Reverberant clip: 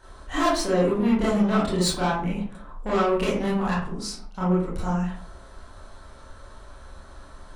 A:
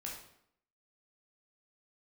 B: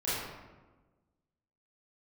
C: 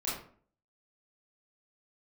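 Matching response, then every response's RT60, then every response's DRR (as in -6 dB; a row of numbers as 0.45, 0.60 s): C; 0.70, 1.2, 0.50 s; -2.5, -12.5, -8.5 dB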